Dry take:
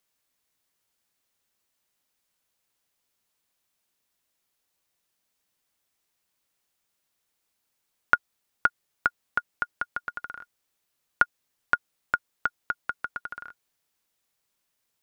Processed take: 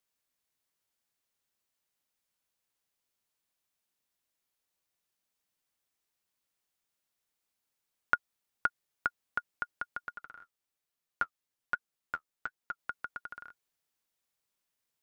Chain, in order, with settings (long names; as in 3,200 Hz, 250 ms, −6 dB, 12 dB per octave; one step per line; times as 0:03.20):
0:10.14–0:12.79: flanger 1.2 Hz, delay 4 ms, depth 9.8 ms, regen +32%
level −7 dB